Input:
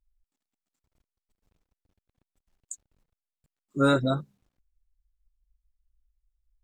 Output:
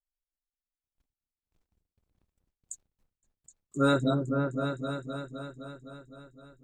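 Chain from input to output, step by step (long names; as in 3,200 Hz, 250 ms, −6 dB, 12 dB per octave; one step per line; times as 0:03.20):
on a send: echo whose low-pass opens from repeat to repeat 257 ms, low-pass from 400 Hz, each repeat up 2 octaves, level −3 dB
on the sum: noise gate with hold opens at −59 dBFS
level −2.5 dB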